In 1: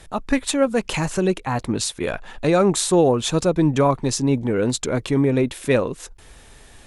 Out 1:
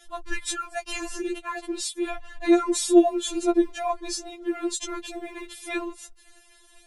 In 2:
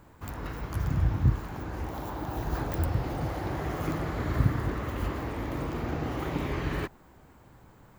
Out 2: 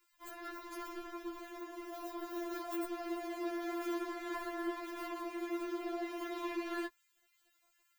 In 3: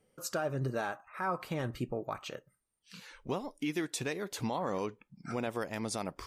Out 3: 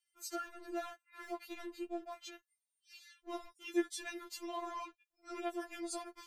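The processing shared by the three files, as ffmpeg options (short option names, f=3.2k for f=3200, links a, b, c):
-filter_complex "[0:a]acrossover=split=1900[a][b];[a]aeval=exprs='sgn(val(0))*max(abs(val(0))-0.00422,0)':c=same[c];[c][b]amix=inputs=2:normalize=0,afftfilt=real='re*4*eq(mod(b,16),0)':imag='im*4*eq(mod(b,16),0)':win_size=2048:overlap=0.75,volume=-2.5dB"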